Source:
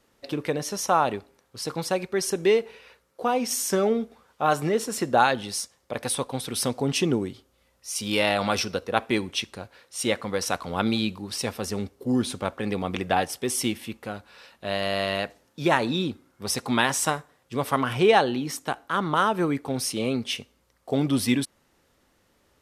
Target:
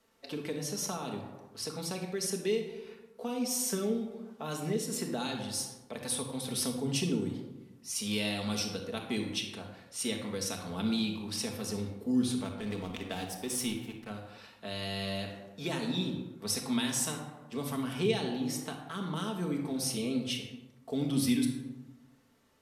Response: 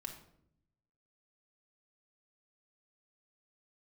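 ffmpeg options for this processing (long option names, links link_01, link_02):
-filter_complex "[0:a]lowshelf=frequency=130:gain=-8.5,asettb=1/sr,asplit=3[link_01][link_02][link_03];[link_01]atrim=end=12.444[link_04];[link_02]atrim=start=12.44:end=14.1,asetpts=PTS-STARTPTS,afade=type=in:duration=0.004:curve=qsin,afade=type=out:start_time=1.656:duration=0.004:curve=qsin,aeval=exprs='sgn(val(0))*max(abs(val(0))-0.0112,0)':channel_layout=same[link_05];[link_03]atrim=start=14.096[link_06];[link_04][link_05]acrossfade=duration=0.004:curve1=hsin:curve2=qsin[link_07];[link_07][link_06]acrossfade=duration=0.004:curve1=qsin:curve2=hsin[link_08];[1:a]atrim=start_sample=2205,asetrate=35280,aresample=44100[link_09];[link_08][link_09]afir=irnorm=-1:irlink=0,acrossover=split=360|3000[link_10][link_11][link_12];[link_11]acompressor=threshold=-41dB:ratio=5[link_13];[link_10][link_13][link_12]amix=inputs=3:normalize=0,volume=-2dB"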